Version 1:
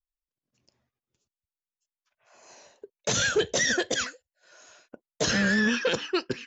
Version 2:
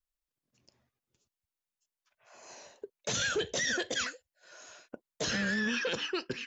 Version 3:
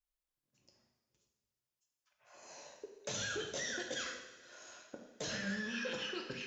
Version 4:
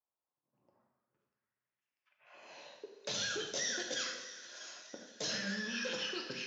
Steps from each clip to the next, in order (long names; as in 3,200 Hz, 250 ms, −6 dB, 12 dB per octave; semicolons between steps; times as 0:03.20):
in parallel at +1.5 dB: downward compressor, threshold −33 dBFS, peak gain reduction 13 dB; on the sum: brickwall limiter −18.5 dBFS, peak gain reduction 7.5 dB; dynamic equaliser 2,900 Hz, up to +3 dB, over −40 dBFS, Q 0.86; level −5.5 dB
downward compressor, threshold −34 dBFS, peak gain reduction 7 dB; convolution reverb, pre-delay 3 ms, DRR 1 dB; level −5 dB
high-pass filter 140 Hz 12 dB per octave; echo with a time of its own for lows and highs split 1,000 Hz, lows 87 ms, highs 642 ms, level −15 dB; low-pass filter sweep 950 Hz → 5,400 Hz, 0:00.59–0:03.37